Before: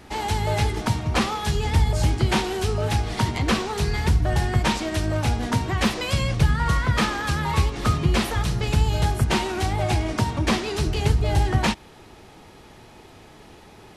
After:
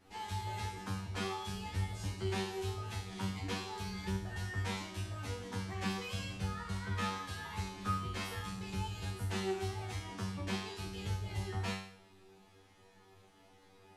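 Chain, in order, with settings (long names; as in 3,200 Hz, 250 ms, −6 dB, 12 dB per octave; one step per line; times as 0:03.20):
notch filter 600 Hz, Q 12
tuned comb filter 96 Hz, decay 0.6 s, harmonics all, mix 100%
flanger 1.1 Hz, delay 3.7 ms, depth 1.7 ms, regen +64%
level +1.5 dB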